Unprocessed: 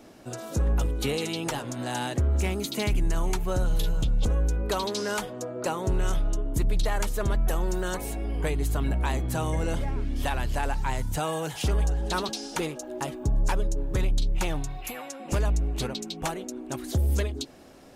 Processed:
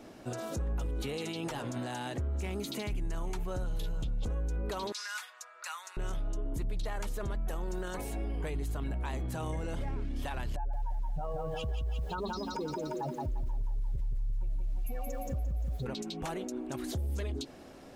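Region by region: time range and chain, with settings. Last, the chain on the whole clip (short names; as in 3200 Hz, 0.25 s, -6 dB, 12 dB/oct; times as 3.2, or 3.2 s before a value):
4.92–5.97 HPF 1300 Hz 24 dB/oct + notch 3100 Hz, Q 11 + upward compressor, threshold -49 dBFS
10.56–15.86 spectral contrast raised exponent 2.5 + notch 330 Hz, Q 9.6 + lo-fi delay 0.174 s, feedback 55%, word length 9-bit, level -3 dB
whole clip: limiter -28 dBFS; high shelf 5400 Hz -5 dB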